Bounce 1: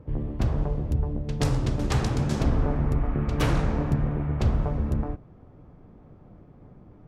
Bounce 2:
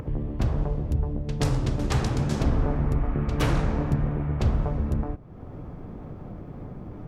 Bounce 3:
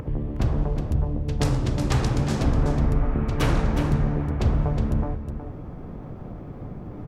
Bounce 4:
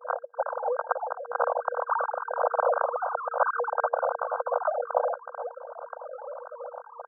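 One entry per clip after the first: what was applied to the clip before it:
upward compressor, threshold -26 dBFS
delay 365 ms -8 dB; trim +1.5 dB
formants replaced by sine waves; FFT band-pass 470–1600 Hz

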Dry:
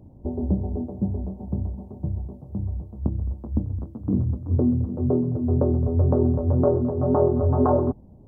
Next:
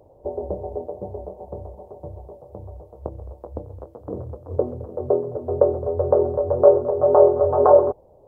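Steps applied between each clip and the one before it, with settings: resonant low shelf 340 Hz -13.5 dB, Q 3; trim +4 dB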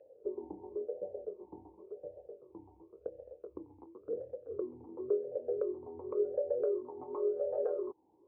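compression 3:1, threshold -25 dBFS, peak gain reduction 13.5 dB; talking filter e-u 0.93 Hz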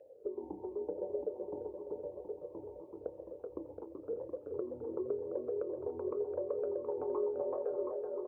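compression, threshold -36 dBFS, peak gain reduction 9.5 dB; bouncing-ball echo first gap 380 ms, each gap 0.9×, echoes 5; trim +2 dB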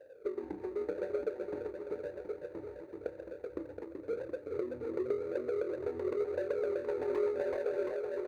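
median filter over 41 samples; trim +3.5 dB

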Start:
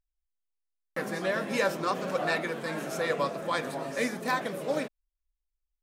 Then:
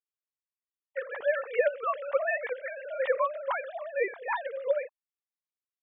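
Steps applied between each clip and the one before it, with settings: formants replaced by sine waves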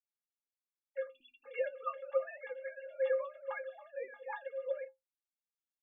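spectral selection erased 1.10–1.45 s, 360–2400 Hz; inharmonic resonator 250 Hz, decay 0.2 s, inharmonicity 0.03; trim +1.5 dB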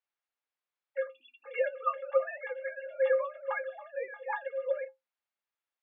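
band-pass 540–2700 Hz; trim +8.5 dB

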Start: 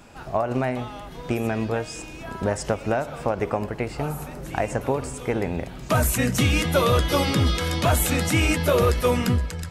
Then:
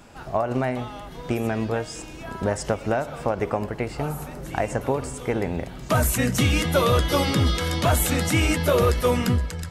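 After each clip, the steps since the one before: band-stop 2.5 kHz, Q 26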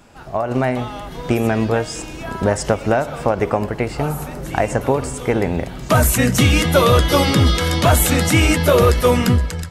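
level rider gain up to 8 dB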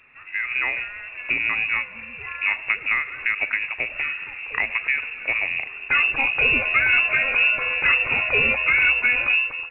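frequency inversion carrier 2.7 kHz; trim -6 dB; µ-law 64 kbps 8 kHz

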